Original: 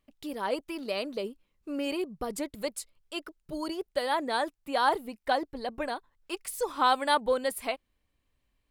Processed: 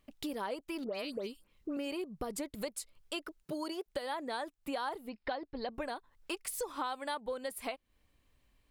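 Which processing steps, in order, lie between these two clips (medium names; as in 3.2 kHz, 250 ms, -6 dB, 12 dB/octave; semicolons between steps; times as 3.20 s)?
3.43–3.85 s: high-pass 150 Hz -> 430 Hz 12 dB/octave; compression 6:1, threshold -41 dBFS, peak gain reduction 20 dB; 0.84–1.77 s: phase dispersion highs, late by 110 ms, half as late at 2.3 kHz; 5.09–5.74 s: brick-wall FIR low-pass 5.4 kHz; trim +5 dB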